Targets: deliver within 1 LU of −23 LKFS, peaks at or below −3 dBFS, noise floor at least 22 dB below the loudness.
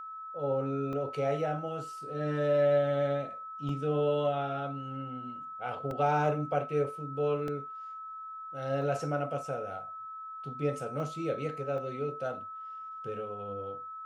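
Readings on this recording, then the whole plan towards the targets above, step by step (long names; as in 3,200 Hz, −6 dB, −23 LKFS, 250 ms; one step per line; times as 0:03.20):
number of dropouts 7; longest dropout 1.7 ms; interfering tone 1,300 Hz; level of the tone −40 dBFS; integrated loudness −33.0 LKFS; sample peak −15.0 dBFS; target loudness −23.0 LKFS
→ repair the gap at 0:00.93/0:03.69/0:05.91/0:07.48/0:08.82/0:11.00/0:11.78, 1.7 ms
notch filter 1,300 Hz, Q 30
level +10 dB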